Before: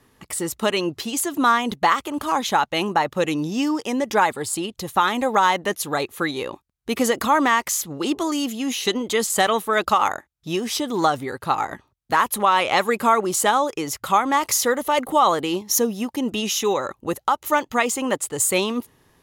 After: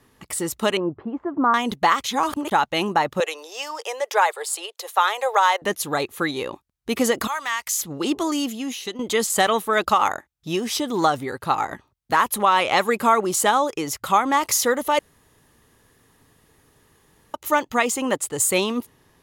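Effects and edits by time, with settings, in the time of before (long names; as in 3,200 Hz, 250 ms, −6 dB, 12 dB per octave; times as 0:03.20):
0:00.77–0:01.54: low-pass filter 1,300 Hz 24 dB per octave
0:02.04–0:02.51: reverse
0:03.20–0:05.62: Butterworth high-pass 440 Hz 48 dB per octave
0:07.27–0:07.79: guitar amp tone stack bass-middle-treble 10-0-10
0:08.40–0:08.99: fade out, to −13.5 dB
0:14.99–0:17.34: fill with room tone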